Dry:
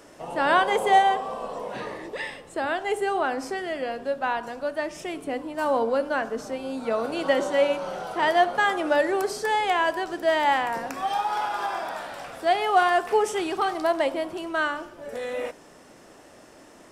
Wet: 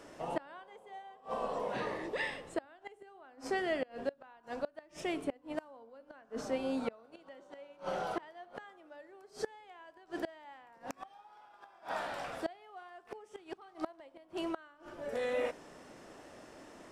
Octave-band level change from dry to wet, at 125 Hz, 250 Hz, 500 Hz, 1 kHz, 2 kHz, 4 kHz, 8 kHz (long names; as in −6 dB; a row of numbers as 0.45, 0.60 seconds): −7.0, −10.0, −14.0, −20.0, −17.0, −16.0, −14.5 decibels